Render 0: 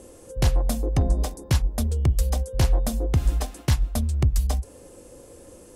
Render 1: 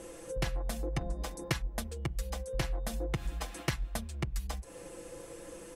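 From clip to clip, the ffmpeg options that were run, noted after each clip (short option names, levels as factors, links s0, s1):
-af "acompressor=threshold=0.0355:ratio=6,equalizer=f=1900:w=0.71:g=9,aecho=1:1:6:0.65,volume=0.668"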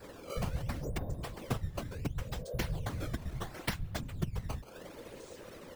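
-af "adynamicequalizer=threshold=0.00355:dfrequency=630:dqfactor=0.95:tfrequency=630:tqfactor=0.95:attack=5:release=100:ratio=0.375:range=1.5:mode=cutabove:tftype=bell,acrusher=samples=14:mix=1:aa=0.000001:lfo=1:lforange=22.4:lforate=0.71,afftfilt=real='hypot(re,im)*cos(2*PI*random(0))':imag='hypot(re,im)*sin(2*PI*random(1))':win_size=512:overlap=0.75,volume=1.78"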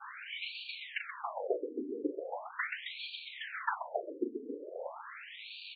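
-filter_complex "[0:a]acrusher=bits=7:mix=0:aa=0.000001,asplit=2[s0][s1];[s1]aecho=0:1:37.9|128.3:0.447|0.447[s2];[s0][s2]amix=inputs=2:normalize=0,afftfilt=real='re*between(b*sr/1024,330*pow(3300/330,0.5+0.5*sin(2*PI*0.4*pts/sr))/1.41,330*pow(3300/330,0.5+0.5*sin(2*PI*0.4*pts/sr))*1.41)':imag='im*between(b*sr/1024,330*pow(3300/330,0.5+0.5*sin(2*PI*0.4*pts/sr))/1.41,330*pow(3300/330,0.5+0.5*sin(2*PI*0.4*pts/sr))*1.41)':win_size=1024:overlap=0.75,volume=3.16"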